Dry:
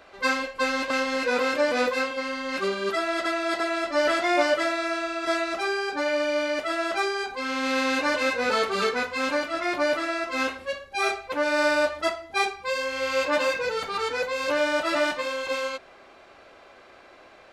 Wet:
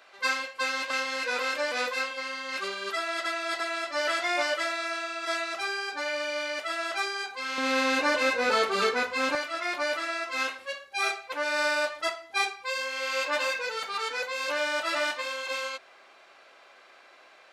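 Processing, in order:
high-pass filter 1,400 Hz 6 dB per octave, from 0:07.58 260 Hz, from 0:09.35 1,200 Hz

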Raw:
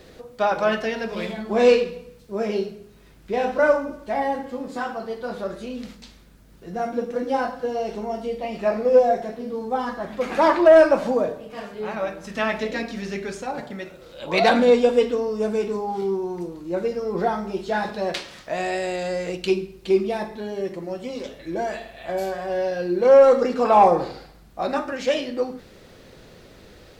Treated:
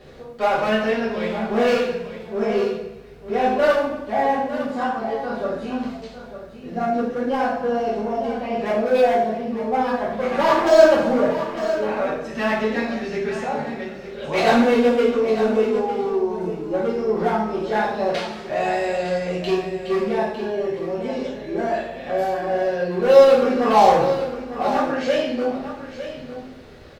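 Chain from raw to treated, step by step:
high-shelf EQ 4,500 Hz −11.5 dB
in parallel at −5 dB: wave folding −20.5 dBFS
on the sum: single-tap delay 904 ms −11.5 dB
coupled-rooms reverb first 0.56 s, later 2 s, DRR −6 dB
level −6 dB

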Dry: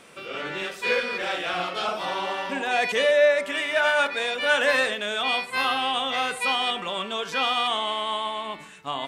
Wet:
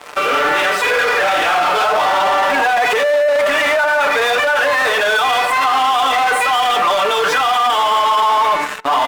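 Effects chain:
high-pass filter 240 Hz 12 dB per octave
on a send at −22 dB: convolution reverb, pre-delay 5 ms
on the sum: flanger 2 Hz, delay 1 ms, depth 4.3 ms, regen +62%
comb filter 6.7 ms, depth 74%
in parallel at −7.5 dB: fuzz pedal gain 45 dB, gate −48 dBFS
on the sum: parametric band 1,000 Hz +13.5 dB 2.6 octaves
brickwall limiter −8.5 dBFS, peak gain reduction 13.5 dB

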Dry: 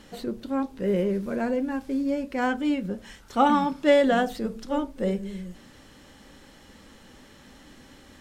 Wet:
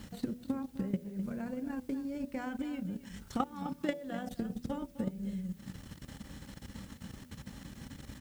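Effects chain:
drawn EQ curve 170 Hz 0 dB, 360 Hz −14 dB, 3,000 Hz −8 dB, 8,600 Hz 0 dB
output level in coarse steps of 14 dB
high-pass filter 51 Hz
downward compressor 4 to 1, threshold −48 dBFS, peak gain reduction 17.5 dB
on a send: single-tap delay 256 ms −11.5 dB
on the sum: transient designer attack +7 dB, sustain −8 dB
background noise blue −71 dBFS
high-shelf EQ 3,200 Hz −8.5 dB
hum removal 81.82 Hz, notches 8
level +11 dB

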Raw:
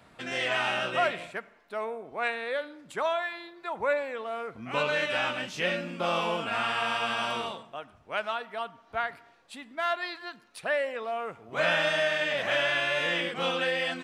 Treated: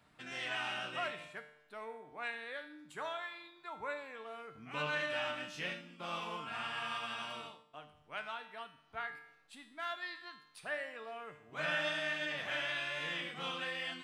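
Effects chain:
parametric band 530 Hz −6 dB 1 octave
tuned comb filter 150 Hz, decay 0.76 s, harmonics all, mix 80%
0:05.73–0:07.74: expander for the loud parts 1.5 to 1, over −59 dBFS
level +2 dB

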